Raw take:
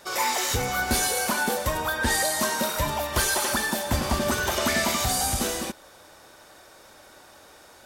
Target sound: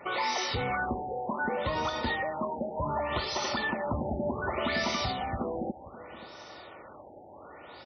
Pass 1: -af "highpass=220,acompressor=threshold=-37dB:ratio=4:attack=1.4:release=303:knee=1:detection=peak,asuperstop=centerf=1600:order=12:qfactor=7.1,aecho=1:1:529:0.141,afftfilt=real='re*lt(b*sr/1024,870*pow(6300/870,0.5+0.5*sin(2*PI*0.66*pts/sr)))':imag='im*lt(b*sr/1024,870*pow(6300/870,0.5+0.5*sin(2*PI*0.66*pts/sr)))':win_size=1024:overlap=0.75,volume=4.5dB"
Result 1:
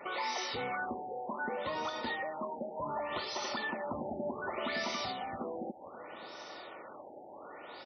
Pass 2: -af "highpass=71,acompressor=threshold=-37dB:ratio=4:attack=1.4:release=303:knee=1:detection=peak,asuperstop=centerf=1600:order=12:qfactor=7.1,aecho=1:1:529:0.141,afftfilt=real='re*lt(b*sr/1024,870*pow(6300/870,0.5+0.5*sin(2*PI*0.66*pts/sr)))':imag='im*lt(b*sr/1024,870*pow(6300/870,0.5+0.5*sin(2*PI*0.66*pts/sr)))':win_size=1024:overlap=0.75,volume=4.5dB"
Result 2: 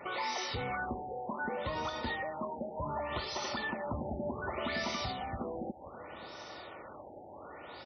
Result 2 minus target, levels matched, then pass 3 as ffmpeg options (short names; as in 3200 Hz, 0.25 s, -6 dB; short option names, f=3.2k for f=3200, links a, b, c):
compressor: peak gain reduction +5.5 dB
-af "highpass=71,acompressor=threshold=-29.5dB:ratio=4:attack=1.4:release=303:knee=1:detection=peak,asuperstop=centerf=1600:order=12:qfactor=7.1,aecho=1:1:529:0.141,afftfilt=real='re*lt(b*sr/1024,870*pow(6300/870,0.5+0.5*sin(2*PI*0.66*pts/sr)))':imag='im*lt(b*sr/1024,870*pow(6300/870,0.5+0.5*sin(2*PI*0.66*pts/sr)))':win_size=1024:overlap=0.75,volume=4.5dB"